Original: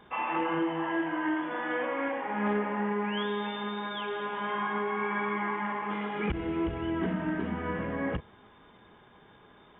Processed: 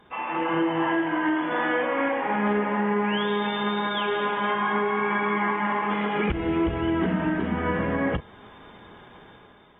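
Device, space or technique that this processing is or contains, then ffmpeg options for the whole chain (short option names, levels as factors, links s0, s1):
low-bitrate web radio: -af "dynaudnorm=f=120:g=9:m=2.66,alimiter=limit=0.168:level=0:latency=1:release=319" -ar 48000 -c:a aac -b:a 48k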